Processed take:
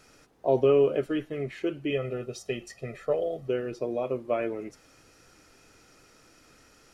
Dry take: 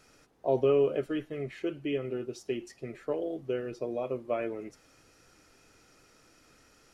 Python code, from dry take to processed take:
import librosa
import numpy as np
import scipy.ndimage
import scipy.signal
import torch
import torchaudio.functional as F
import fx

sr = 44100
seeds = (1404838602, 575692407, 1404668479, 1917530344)

y = fx.comb(x, sr, ms=1.6, depth=0.7, at=(1.9, 3.48))
y = y * librosa.db_to_amplitude(3.5)